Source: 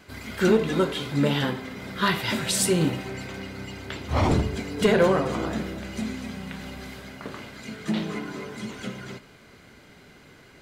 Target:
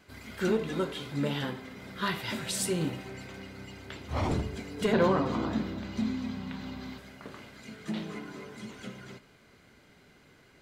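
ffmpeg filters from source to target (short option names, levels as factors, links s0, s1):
-filter_complex "[0:a]asettb=1/sr,asplit=3[s0][s1][s2];[s0]atrim=end=4.934[s3];[s1]atrim=start=4.93:end=6.98,asetpts=PTS-STARTPTS,afade=t=in:d=0.004:c=qsin,afade=t=out:st=2.046:d=0.004:c=qsin,equalizer=f=100:t=o:w=0.67:g=8,equalizer=f=250:t=o:w=0.67:g=10,equalizer=f=1000:t=o:w=0.67:g=7,equalizer=f=4000:t=o:w=0.67:g=6,equalizer=f=10000:t=o:w=0.67:g=-11[s4];[s2]atrim=start=6.976[s5];[s3][s4]acrossfade=d=0.004:c1=hsin:c2=qsin[s6];[s6][s5]acrossfade=d=0.004:c1=qsin:c2=hsin,volume=0.398"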